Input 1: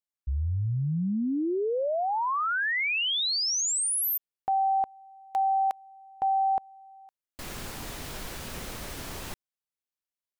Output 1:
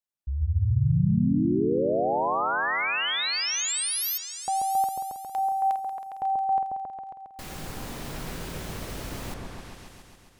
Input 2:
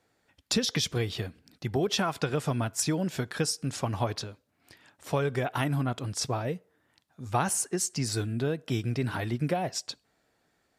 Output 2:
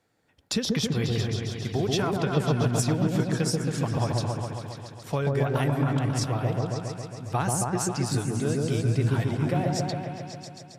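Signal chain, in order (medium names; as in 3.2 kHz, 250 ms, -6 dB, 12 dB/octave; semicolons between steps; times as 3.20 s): peaking EQ 140 Hz +3.5 dB 1.4 oct; on a send: delay with an opening low-pass 136 ms, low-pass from 750 Hz, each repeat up 1 oct, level 0 dB; on the sum: trim -1.5 dB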